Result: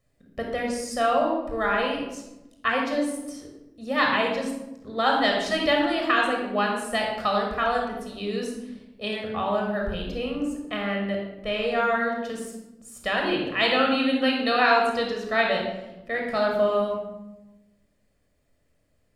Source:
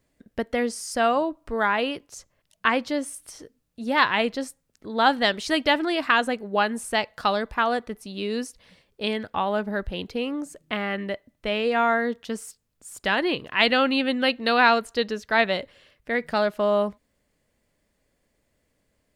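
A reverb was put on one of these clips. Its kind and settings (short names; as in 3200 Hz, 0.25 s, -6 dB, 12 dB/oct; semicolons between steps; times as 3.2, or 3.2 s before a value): shoebox room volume 3900 m³, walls furnished, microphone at 6.2 m; gain -6 dB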